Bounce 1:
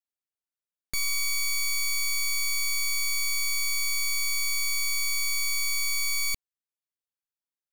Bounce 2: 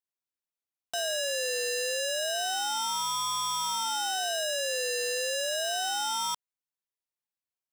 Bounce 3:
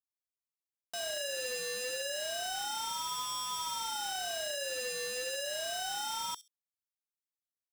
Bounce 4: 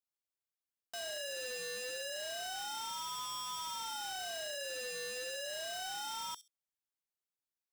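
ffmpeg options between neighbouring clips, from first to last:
ffmpeg -i in.wav -filter_complex "[0:a]aeval=exprs='if(lt(val(0),0),0.708*val(0),val(0))':channel_layout=same,acrossover=split=9600[link_01][link_02];[link_02]acompressor=threshold=-44dB:ratio=4:attack=1:release=60[link_03];[link_01][link_03]amix=inputs=2:normalize=0,aeval=exprs='val(0)*sin(2*PI*750*n/s+750*0.35/0.3*sin(2*PI*0.3*n/s))':channel_layout=same,volume=1.5dB" out.wav
ffmpeg -i in.wav -filter_complex "[0:a]aecho=1:1:66|132:0.316|0.0538,acrossover=split=3300[link_01][link_02];[link_01]acrusher=bits=5:mix=0:aa=0.000001[link_03];[link_03][link_02]amix=inputs=2:normalize=0,volume=-7dB" out.wav
ffmpeg -i in.wav -af "asoftclip=type=hard:threshold=-34.5dB,volume=-3dB" out.wav

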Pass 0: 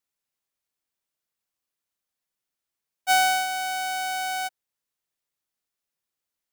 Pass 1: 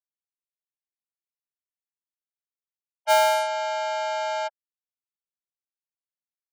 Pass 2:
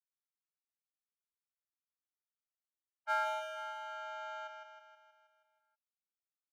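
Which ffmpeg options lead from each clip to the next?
ffmpeg -i in.wav -af "afftfilt=real='re*gte(hypot(re,im),0.0355)':imag='im*gte(hypot(re,im),0.0355)':win_size=1024:overlap=0.75,lowshelf=frequency=590:width_type=q:width=3:gain=-7.5,aeval=exprs='val(0)*sin(2*PI*120*n/s)':channel_layout=same" out.wav
ffmpeg -i in.wav -af "bandpass=frequency=1300:width_type=q:width=5.4:csg=0,aemphasis=mode=production:type=cd,aecho=1:1:159|318|477|636|795|954|1113|1272:0.531|0.303|0.172|0.0983|0.056|0.0319|0.0182|0.0104,volume=-2.5dB" out.wav

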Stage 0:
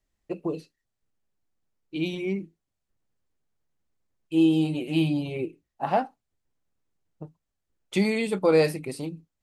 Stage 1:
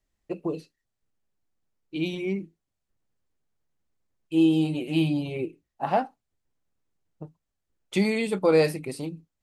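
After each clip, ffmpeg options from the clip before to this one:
ffmpeg -i in.wav -af anull out.wav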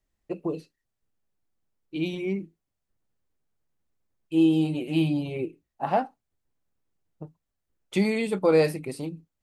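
ffmpeg -i in.wav -af "equalizer=frequency=5200:width_type=o:width=2.5:gain=-2.5" out.wav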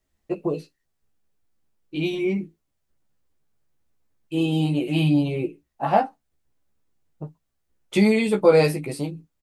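ffmpeg -i in.wav -filter_complex "[0:a]asplit=2[link_01][link_02];[link_02]adelay=14,volume=-3dB[link_03];[link_01][link_03]amix=inputs=2:normalize=0,volume=3.5dB" out.wav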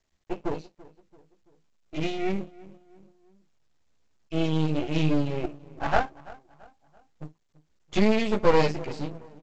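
ffmpeg -i in.wav -filter_complex "[0:a]asplit=2[link_01][link_02];[link_02]adelay=336,lowpass=frequency=1400:poles=1,volume=-20dB,asplit=2[link_03][link_04];[link_04]adelay=336,lowpass=frequency=1400:poles=1,volume=0.44,asplit=2[link_05][link_06];[link_06]adelay=336,lowpass=frequency=1400:poles=1,volume=0.44[link_07];[link_01][link_03][link_05][link_07]amix=inputs=4:normalize=0,aeval=exprs='max(val(0),0)':channel_layout=same" -ar 16000 -c:a pcm_mulaw out.wav

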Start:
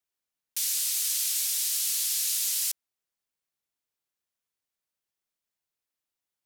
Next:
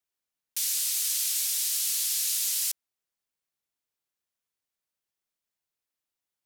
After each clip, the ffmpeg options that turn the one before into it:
ffmpeg -i in.wav -af anull out.wav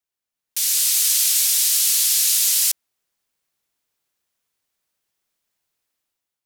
ffmpeg -i in.wav -af "dynaudnorm=framelen=160:gausssize=7:maxgain=10.5dB" out.wav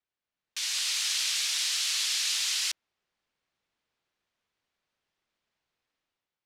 ffmpeg -i in.wav -af "lowpass=3800" out.wav

